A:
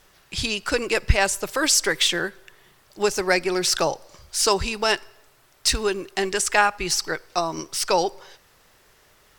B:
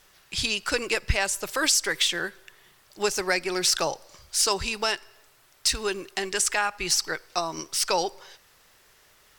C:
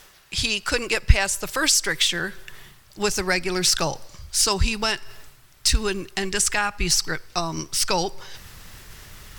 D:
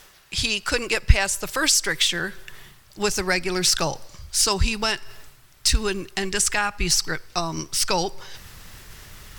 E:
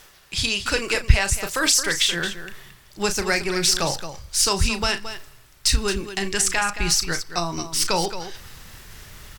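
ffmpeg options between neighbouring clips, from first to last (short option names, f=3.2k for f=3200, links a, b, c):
-af "tiltshelf=f=1.1k:g=-3,alimiter=limit=-8dB:level=0:latency=1:release=253,volume=-2.5dB"
-af "asubboost=boost=5:cutoff=210,areverse,acompressor=mode=upward:threshold=-34dB:ratio=2.5,areverse,volume=3dB"
-af anull
-af "aecho=1:1:34.99|221.6:0.316|0.282"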